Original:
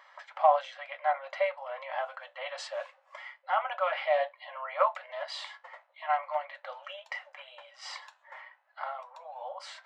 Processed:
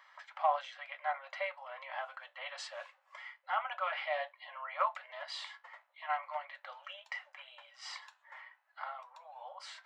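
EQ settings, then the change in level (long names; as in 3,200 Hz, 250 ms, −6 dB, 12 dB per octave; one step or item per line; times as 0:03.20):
high-pass filter 900 Hz 12 dB per octave
−3.0 dB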